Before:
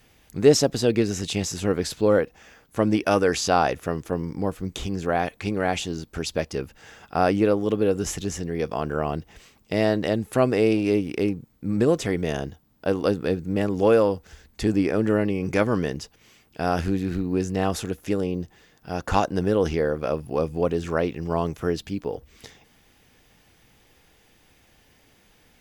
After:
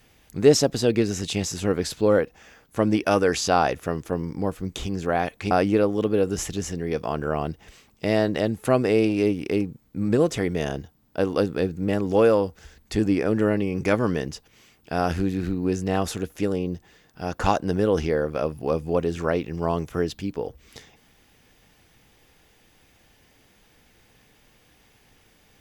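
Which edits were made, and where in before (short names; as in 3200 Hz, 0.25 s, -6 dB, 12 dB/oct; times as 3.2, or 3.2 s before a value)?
5.51–7.19 cut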